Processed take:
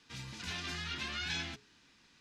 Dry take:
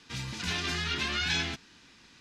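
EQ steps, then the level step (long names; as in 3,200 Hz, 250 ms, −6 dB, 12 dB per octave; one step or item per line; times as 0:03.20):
mains-hum notches 60/120/180/240/300/360/420 Hz
−8.0 dB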